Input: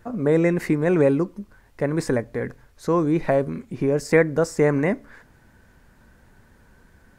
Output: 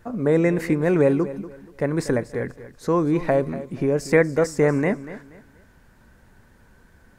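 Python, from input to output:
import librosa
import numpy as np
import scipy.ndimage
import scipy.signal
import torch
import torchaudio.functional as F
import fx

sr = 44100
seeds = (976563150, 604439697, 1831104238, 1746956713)

y = fx.echo_feedback(x, sr, ms=239, feedback_pct=28, wet_db=-15.0)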